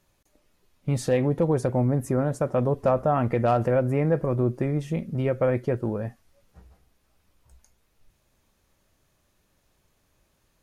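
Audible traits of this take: noise floor -69 dBFS; spectral tilt -7.0 dB/octave

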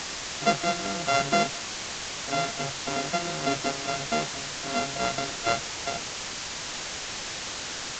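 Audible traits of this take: a buzz of ramps at a fixed pitch in blocks of 64 samples; random-step tremolo, depth 75%; a quantiser's noise floor 6-bit, dither triangular; µ-law

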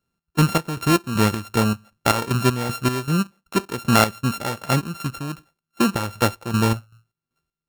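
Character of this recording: a buzz of ramps at a fixed pitch in blocks of 32 samples; chopped level 2.6 Hz, depth 65%, duty 50%

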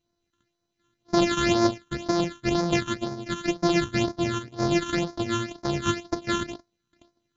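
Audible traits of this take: a buzz of ramps at a fixed pitch in blocks of 128 samples; phasing stages 8, 2 Hz, lowest notch 640–2800 Hz; MP2

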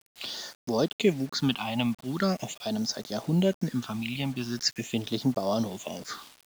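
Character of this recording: phasing stages 6, 0.42 Hz, lowest notch 420–2600 Hz; a quantiser's noise floor 8-bit, dither none

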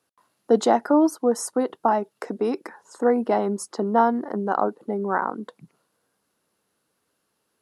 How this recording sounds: noise floor -75 dBFS; spectral tilt -2.5 dB/octave

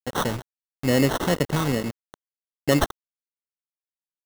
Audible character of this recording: a quantiser's noise floor 6-bit, dither none; phasing stages 2, 2.3 Hz, lowest notch 680–1900 Hz; aliases and images of a low sample rate 2.4 kHz, jitter 0%

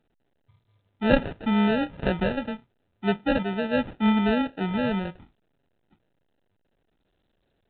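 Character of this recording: random-step tremolo 3.5 Hz; aliases and images of a low sample rate 1.1 kHz, jitter 0%; A-law

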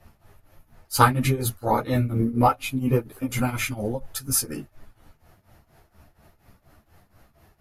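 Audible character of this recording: tremolo triangle 4.2 Hz, depth 90%; a shimmering, thickened sound

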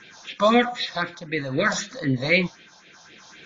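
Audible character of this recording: phasing stages 4, 3.9 Hz, lowest notch 340–1100 Hz; a quantiser's noise floor 12-bit, dither none; tremolo triangle 0.63 Hz, depth 55%; AAC

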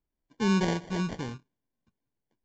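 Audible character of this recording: aliases and images of a low sample rate 1.3 kHz, jitter 0%; Vorbis

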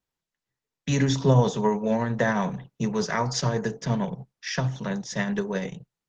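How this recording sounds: tremolo triangle 11 Hz, depth 35%; Opus

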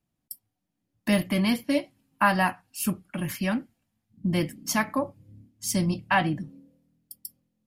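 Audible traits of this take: noise floor -81 dBFS; spectral tilt -4.5 dB/octave

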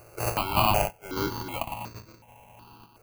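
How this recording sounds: a buzz of ramps at a fixed pitch in blocks of 16 samples; random-step tremolo; aliases and images of a low sample rate 1.8 kHz, jitter 0%; notches that jump at a steady rate 2.7 Hz 910–3000 Hz

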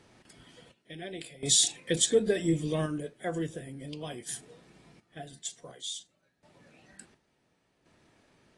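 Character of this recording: random-step tremolo 1.4 Hz, depth 90%; AAC

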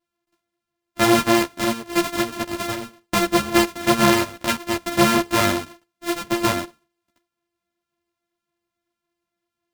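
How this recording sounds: a buzz of ramps at a fixed pitch in blocks of 128 samples; a shimmering, thickened sound

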